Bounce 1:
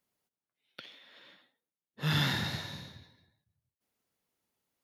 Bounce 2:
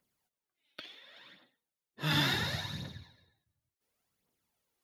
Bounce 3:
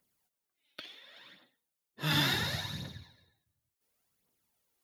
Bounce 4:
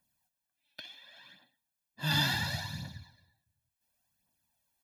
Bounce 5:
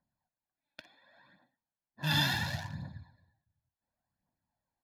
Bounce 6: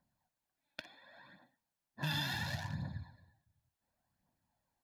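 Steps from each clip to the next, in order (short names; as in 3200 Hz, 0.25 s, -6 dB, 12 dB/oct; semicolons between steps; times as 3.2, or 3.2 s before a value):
phaser 0.7 Hz, delay 3.6 ms, feedback 52%
high shelf 7300 Hz +6 dB
comb 1.2 ms, depth 87%; gain -3 dB
Wiener smoothing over 15 samples
compressor 4:1, threshold -40 dBFS, peak gain reduction 13 dB; gain +4 dB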